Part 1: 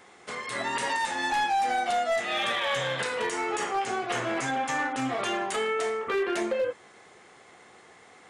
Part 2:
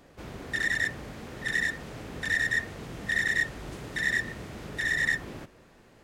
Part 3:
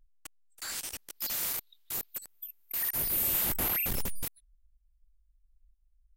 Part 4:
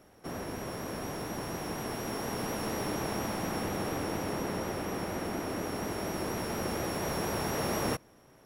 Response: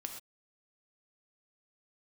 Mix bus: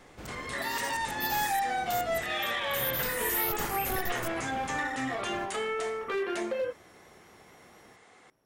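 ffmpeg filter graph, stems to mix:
-filter_complex "[0:a]volume=0.631[s0];[1:a]acompressor=threshold=0.0126:ratio=5,volume=0.891[s1];[2:a]asplit=2[s2][s3];[s3]afreqshift=1.8[s4];[s2][s4]amix=inputs=2:normalize=1,volume=0.944[s5];[3:a]acompressor=threshold=0.00708:ratio=6,volume=0.2[s6];[s0][s1][s5][s6]amix=inputs=4:normalize=0"

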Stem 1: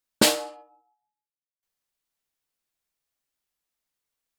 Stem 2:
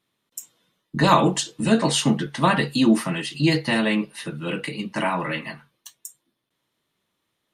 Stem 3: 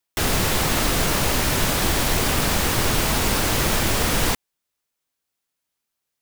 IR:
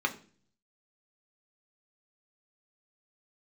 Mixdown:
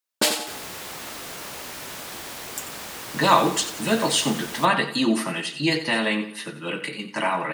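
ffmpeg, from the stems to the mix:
-filter_complex "[0:a]volume=0.891,asplit=2[s0][s1];[s1]volume=0.398[s2];[1:a]adelay=2200,volume=1.12,asplit=2[s3][s4];[s4]volume=0.251[s5];[2:a]adelay=300,volume=0.224[s6];[s2][s5]amix=inputs=2:normalize=0,aecho=0:1:89|178|267|356|445:1|0.39|0.152|0.0593|0.0231[s7];[s0][s3][s6][s7]amix=inputs=4:normalize=0,highpass=f=420:p=1"

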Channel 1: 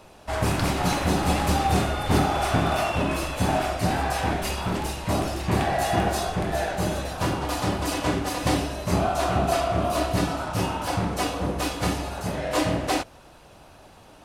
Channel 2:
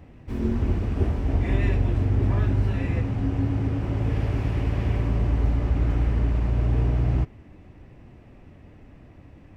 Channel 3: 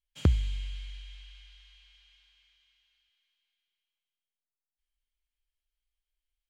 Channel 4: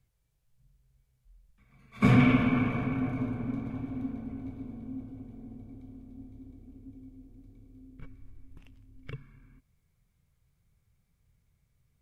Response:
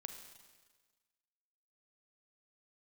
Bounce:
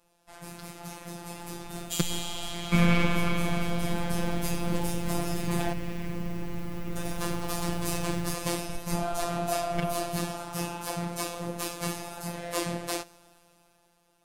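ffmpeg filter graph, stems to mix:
-filter_complex "[0:a]volume=0.126,asplit=3[s0][s1][s2];[s0]atrim=end=5.73,asetpts=PTS-STARTPTS,afade=t=out:st=5.726:d=0.004:c=hsin[s3];[s1]atrim=start=5.73:end=6.96,asetpts=PTS-STARTPTS,volume=0[s4];[s2]atrim=start=6.96,asetpts=PTS-STARTPTS,afade=t=in:d=0.004:c=hsin[s5];[s3][s4][s5]concat=n=3:v=0:a=1,asplit=2[s6][s7];[s7]volume=0.316[s8];[1:a]highshelf=f=2400:g=5.5,adelay=1100,volume=0.141,asplit=2[s9][s10];[s10]volume=0.211[s11];[2:a]crystalizer=i=6:c=0,adelay=1750,volume=0.708,asplit=2[s12][s13];[s13]volume=0.531[s14];[3:a]aeval=exprs='if(lt(val(0),0),0.447*val(0),val(0))':c=same,adelay=700,volume=1,asplit=2[s15][s16];[s16]volume=0.531[s17];[4:a]atrim=start_sample=2205[s18];[s8][s11][s14][s17]amix=inputs=4:normalize=0[s19];[s19][s18]afir=irnorm=-1:irlink=0[s20];[s6][s9][s12][s15][s20]amix=inputs=5:normalize=0,highshelf=f=6700:g=12,dynaudnorm=f=230:g=9:m=3.98,afftfilt=real='hypot(re,im)*cos(PI*b)':imag='0':win_size=1024:overlap=0.75"

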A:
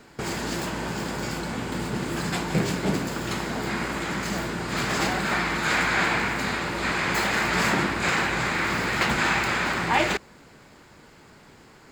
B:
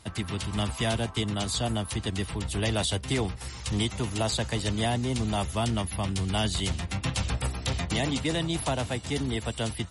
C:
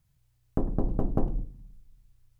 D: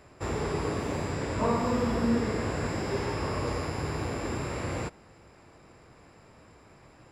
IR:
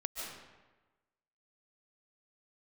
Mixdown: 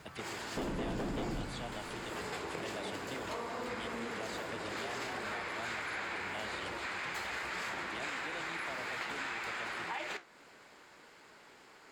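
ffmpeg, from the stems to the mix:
-filter_complex "[0:a]equalizer=f=9500:w=0.31:g=10,flanger=delay=9.5:depth=7.9:regen=-61:speed=1.7:shape=sinusoidal,volume=0.841[s0];[1:a]volume=0.531[s1];[2:a]asplit=2[s2][s3];[s3]highpass=f=720:p=1,volume=158,asoftclip=type=tanh:threshold=0.335[s4];[s2][s4]amix=inputs=2:normalize=0,lowpass=f=1000:p=1,volume=0.501,volume=0.335[s5];[3:a]adelay=1900,volume=0.794[s6];[s0][s1][s6]amix=inputs=3:normalize=0,bass=f=250:g=-15,treble=f=4000:g=-11,acompressor=threshold=0.0447:ratio=6,volume=1[s7];[s5][s7]amix=inputs=2:normalize=0,acompressor=threshold=0.00708:ratio=2"

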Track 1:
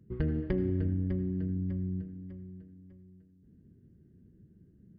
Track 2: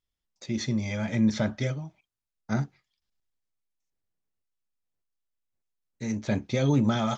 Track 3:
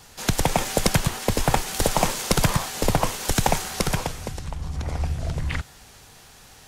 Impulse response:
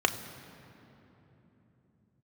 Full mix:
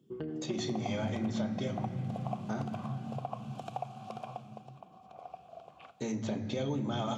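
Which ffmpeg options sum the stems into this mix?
-filter_complex "[0:a]highpass=130,volume=0.422,asplit=2[s0][s1];[s1]volume=0.447[s2];[1:a]alimiter=limit=0.075:level=0:latency=1:release=335,volume=0.794,asplit=2[s3][s4];[s4]volume=0.668[s5];[2:a]asplit=3[s6][s7][s8];[s6]bandpass=f=730:t=q:w=8,volume=1[s9];[s7]bandpass=f=1090:t=q:w=8,volume=0.501[s10];[s8]bandpass=f=2440:t=q:w=8,volume=0.355[s11];[s9][s10][s11]amix=inputs=3:normalize=0,adelay=300,volume=0.422,asplit=2[s12][s13];[s13]volume=0.112[s14];[3:a]atrim=start_sample=2205[s15];[s2][s5][s14]amix=inputs=3:normalize=0[s16];[s16][s15]afir=irnorm=-1:irlink=0[s17];[s0][s3][s12][s17]amix=inputs=4:normalize=0,highpass=99,acompressor=threshold=0.0141:ratio=2"

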